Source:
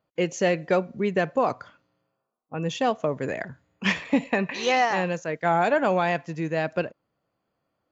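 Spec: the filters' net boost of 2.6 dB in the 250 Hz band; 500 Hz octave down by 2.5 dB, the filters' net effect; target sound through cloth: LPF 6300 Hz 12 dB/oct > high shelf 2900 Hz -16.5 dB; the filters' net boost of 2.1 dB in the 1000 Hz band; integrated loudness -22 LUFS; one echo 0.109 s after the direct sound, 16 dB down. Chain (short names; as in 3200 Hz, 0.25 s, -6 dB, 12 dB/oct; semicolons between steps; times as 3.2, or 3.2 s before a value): LPF 6300 Hz 12 dB/oct; bell 250 Hz +5 dB; bell 500 Hz -6 dB; bell 1000 Hz +7.5 dB; high shelf 2900 Hz -16.5 dB; echo 0.109 s -16 dB; gain +3.5 dB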